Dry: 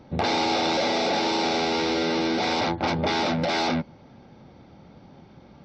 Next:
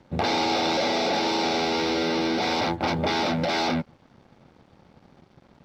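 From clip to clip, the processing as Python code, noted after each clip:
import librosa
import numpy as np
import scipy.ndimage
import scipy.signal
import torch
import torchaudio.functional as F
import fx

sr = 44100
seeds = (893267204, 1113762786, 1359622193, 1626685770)

y = np.sign(x) * np.maximum(np.abs(x) - 10.0 ** (-51.5 / 20.0), 0.0)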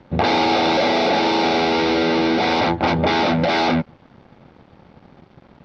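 y = scipy.signal.sosfilt(scipy.signal.butter(2, 3900.0, 'lowpass', fs=sr, output='sos'), x)
y = y * librosa.db_to_amplitude(7.0)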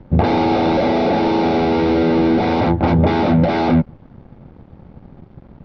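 y = fx.tilt_eq(x, sr, slope=-3.5)
y = y * librosa.db_to_amplitude(-1.5)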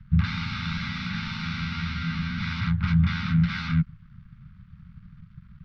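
y = scipy.signal.sosfilt(scipy.signal.ellip(3, 1.0, 40, [180.0, 1300.0], 'bandstop', fs=sr, output='sos'), x)
y = y * librosa.db_to_amplitude(-4.0)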